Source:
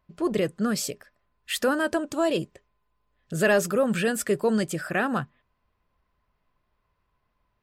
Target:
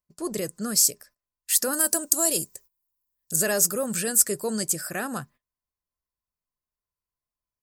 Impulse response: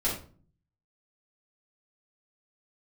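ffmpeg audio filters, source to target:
-filter_complex "[0:a]aexciter=amount=7.6:drive=5.6:freq=4700,asettb=1/sr,asplit=3[link_01][link_02][link_03];[link_01]atrim=end=1.734[link_04];[link_02]atrim=start=1.73:end=3.36,asetpts=PTS-STARTPTS,afade=type=in:duration=0.004:curve=qsin,afade=type=out:start_time=1.626:duration=0.004:curve=qsin,aemphasis=mode=production:type=50fm[link_05];[link_03]atrim=start=3.356[link_06];[link_04][link_05]acrossfade=duration=0.004:curve1=hsin:curve2=qsin[link_07];[link_07][link_06]acrossfade=duration=0.004:curve1=qsin:curve2=hsin,agate=range=-17dB:threshold=-45dB:ratio=16:detection=peak,volume=-5.5dB"

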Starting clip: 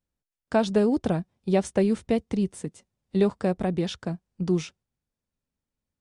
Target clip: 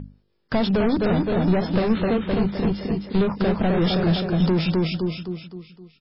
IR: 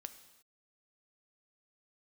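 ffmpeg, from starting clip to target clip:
-filter_complex "[0:a]equalizer=frequency=2100:width_type=o:width=2.5:gain=-3.5,aecho=1:1:259|518|777|1036|1295:0.501|0.21|0.0884|0.0371|0.0156,acompressor=threshold=-24dB:ratio=4,aeval=exprs='val(0)+0.00891*(sin(2*PI*50*n/s)+sin(2*PI*2*50*n/s)/2+sin(2*PI*3*50*n/s)/3+sin(2*PI*4*50*n/s)/4+sin(2*PI*5*50*n/s)/5)':channel_layout=same,asplit=2[link_01][link_02];[link_02]highpass=frequency=720:poles=1,volume=26dB,asoftclip=type=tanh:threshold=-16.5dB[link_03];[link_01][link_03]amix=inputs=2:normalize=0,lowpass=frequency=4300:poles=1,volume=-6dB,bass=frequency=250:gain=11,treble=frequency=4000:gain=5,bandreject=frequency=50:width_type=h:width=6,bandreject=frequency=100:width_type=h:width=6,bandreject=frequency=150:width_type=h:width=6,bandreject=frequency=200:width_type=h:width=6,bandreject=frequency=250:width_type=h:width=6,bandreject=frequency=300:width_type=h:width=6" -ar 12000 -c:a libmp3lame -b:a 16k

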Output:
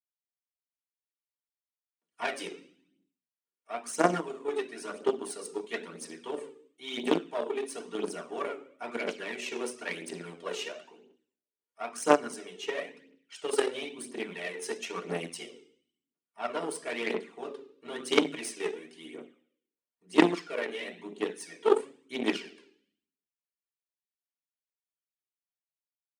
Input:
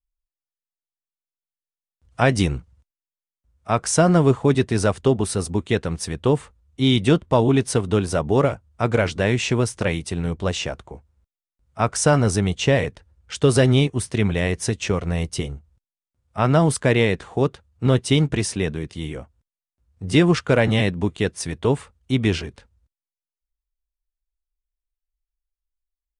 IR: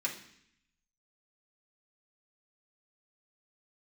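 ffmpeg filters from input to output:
-filter_complex "[1:a]atrim=start_sample=2205,asetrate=52920,aresample=44100[link_01];[0:a][link_01]afir=irnorm=-1:irlink=0,dynaudnorm=framelen=220:gausssize=7:maxgain=11.5dB,aphaser=in_gain=1:out_gain=1:delay=2.5:decay=0.55:speed=0.99:type=triangular,aeval=exprs='1.88*(cos(1*acos(clip(val(0)/1.88,-1,1)))-cos(1*PI/2))+0.531*(cos(3*acos(clip(val(0)/1.88,-1,1)))-cos(3*PI/2))+0.0668*(cos(4*acos(clip(val(0)/1.88,-1,1)))-cos(4*PI/2))+0.0119*(cos(5*acos(clip(val(0)/1.88,-1,1)))-cos(5*PI/2))':channel_layout=same,highpass=frequency=260:width=0.5412,highpass=frequency=260:width=1.3066,volume=-7.5dB"

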